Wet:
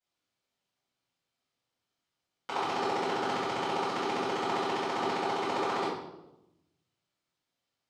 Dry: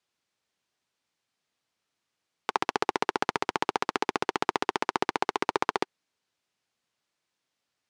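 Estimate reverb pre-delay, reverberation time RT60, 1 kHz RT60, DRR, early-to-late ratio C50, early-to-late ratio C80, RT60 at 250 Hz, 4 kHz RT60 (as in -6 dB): 4 ms, 0.95 s, 0.85 s, -16.5 dB, 0.5 dB, 4.5 dB, 1.3 s, 0.70 s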